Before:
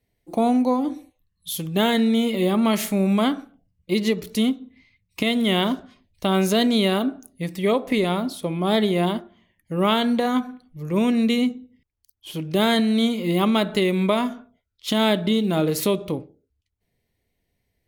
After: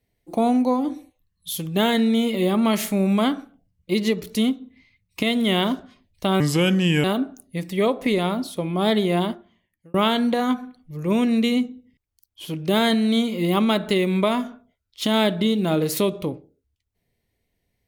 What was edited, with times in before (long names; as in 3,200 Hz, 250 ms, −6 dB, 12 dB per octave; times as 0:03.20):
0:06.40–0:06.90: play speed 78%
0:09.15–0:09.80: fade out